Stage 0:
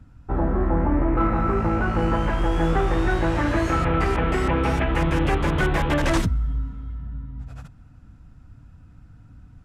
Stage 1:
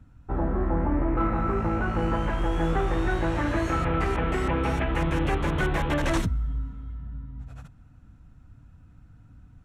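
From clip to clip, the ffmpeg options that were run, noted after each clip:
-af "bandreject=f=4.9k:w=9.4,volume=-4dB"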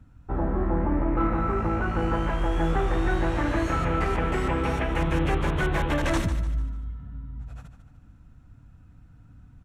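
-af "aecho=1:1:148|296|444|592:0.282|0.107|0.0407|0.0155"

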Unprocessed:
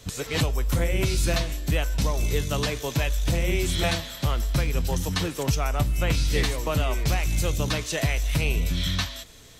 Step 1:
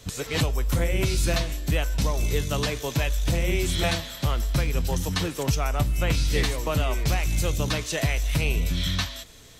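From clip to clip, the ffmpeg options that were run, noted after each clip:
-af anull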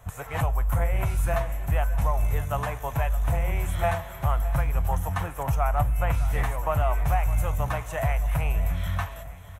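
-af "firequalizer=gain_entry='entry(100,0);entry(210,-12);entry(360,-15);entry(720,6);entry(4500,-27);entry(6400,-15);entry(11000,-4)':delay=0.05:min_phase=1,aecho=1:1:612|1224|1836|2448|3060:0.158|0.0872|0.0479|0.0264|0.0145,volume=1dB"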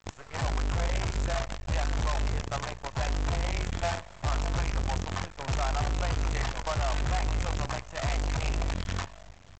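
-af "bandreject=f=145.5:t=h:w=4,bandreject=f=291:t=h:w=4,bandreject=f=436.5:t=h:w=4,bandreject=f=582:t=h:w=4,bandreject=f=727.5:t=h:w=4,bandreject=f=873:t=h:w=4,bandreject=f=1.0185k:t=h:w=4,bandreject=f=1.164k:t=h:w=4,bandreject=f=1.3095k:t=h:w=4,bandreject=f=1.455k:t=h:w=4,bandreject=f=1.6005k:t=h:w=4,bandreject=f=1.746k:t=h:w=4,bandreject=f=1.8915k:t=h:w=4,bandreject=f=2.037k:t=h:w=4,bandreject=f=2.1825k:t=h:w=4,bandreject=f=2.328k:t=h:w=4,bandreject=f=2.4735k:t=h:w=4,bandreject=f=2.619k:t=h:w=4,bandreject=f=2.7645k:t=h:w=4,bandreject=f=2.91k:t=h:w=4,bandreject=f=3.0555k:t=h:w=4,bandreject=f=3.201k:t=h:w=4,bandreject=f=3.3465k:t=h:w=4,bandreject=f=3.492k:t=h:w=4,bandreject=f=3.6375k:t=h:w=4,bandreject=f=3.783k:t=h:w=4,bandreject=f=3.9285k:t=h:w=4,bandreject=f=4.074k:t=h:w=4,bandreject=f=4.2195k:t=h:w=4,bandreject=f=4.365k:t=h:w=4,bandreject=f=4.5105k:t=h:w=4,bandreject=f=4.656k:t=h:w=4,bandreject=f=4.8015k:t=h:w=4,bandreject=f=4.947k:t=h:w=4,bandreject=f=5.0925k:t=h:w=4,bandreject=f=5.238k:t=h:w=4,bandreject=f=5.3835k:t=h:w=4,bandreject=f=5.529k:t=h:w=4,aresample=16000,acrusher=bits=5:dc=4:mix=0:aa=0.000001,aresample=44100,volume=-6dB"

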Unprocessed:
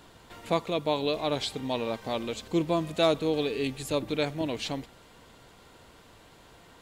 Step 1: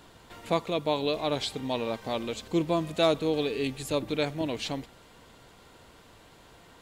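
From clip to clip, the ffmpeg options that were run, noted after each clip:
-af anull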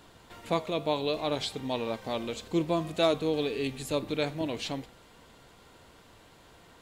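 -af "flanger=delay=9.2:depth=5.1:regen=-85:speed=0.65:shape=triangular,volume=3dB"

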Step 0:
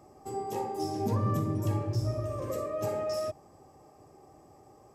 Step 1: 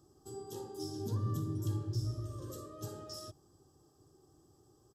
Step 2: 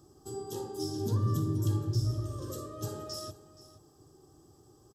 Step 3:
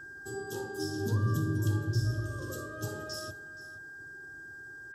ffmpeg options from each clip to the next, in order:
-af "firequalizer=gain_entry='entry(140,0);entry(210,-7);entry(340,0);entry(600,-16);entry(1500,-3);entry(2200,-24);entry(3200,3);entry(11000,1)':delay=0.05:min_phase=1,volume=-5dB"
-af "aecho=1:1:474:0.141,volume=6dB"
-af "aeval=exprs='val(0)+0.00631*sin(2*PI*1600*n/s)':c=same"

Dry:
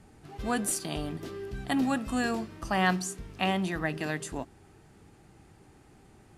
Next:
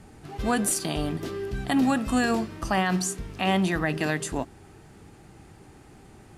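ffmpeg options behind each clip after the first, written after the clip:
-af "alimiter=limit=-20.5dB:level=0:latency=1:release=52,volume=6.5dB"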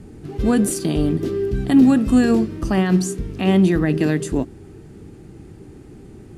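-af "lowshelf=f=540:t=q:w=1.5:g=9"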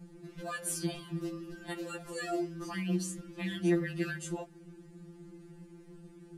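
-filter_complex "[0:a]acrossover=split=370[a][b];[a]acompressor=threshold=-25dB:ratio=8[c];[c][b]amix=inputs=2:normalize=0,afftfilt=real='re*2.83*eq(mod(b,8),0)':imag='im*2.83*eq(mod(b,8),0)':win_size=2048:overlap=0.75,volume=-8dB"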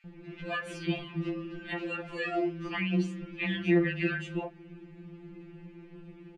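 -filter_complex "[0:a]lowpass=f=2.5k:t=q:w=3.3,acrossover=split=1700[a][b];[a]adelay=40[c];[c][b]amix=inputs=2:normalize=0,volume=3.5dB"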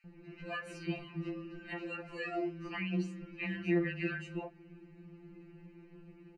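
-af "asuperstop=centerf=3400:order=8:qfactor=5.2,volume=-6dB"

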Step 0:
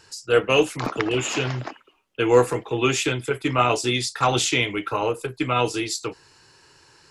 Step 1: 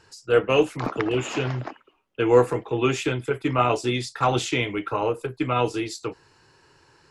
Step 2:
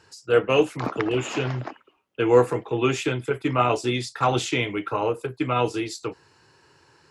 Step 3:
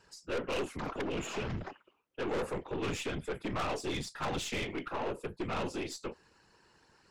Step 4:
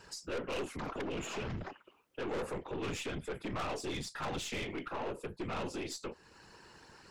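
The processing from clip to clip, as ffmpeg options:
-af "highshelf=f=2.7k:g=-10"
-af "highpass=65"
-af "afftfilt=real='hypot(re,im)*cos(2*PI*random(0))':imag='hypot(re,im)*sin(2*PI*random(1))':win_size=512:overlap=0.75,aeval=exprs='(tanh(35.5*val(0)+0.4)-tanh(0.4))/35.5':c=same"
-af "alimiter=level_in=15.5dB:limit=-24dB:level=0:latency=1:release=369,volume=-15.5dB,volume=8dB"

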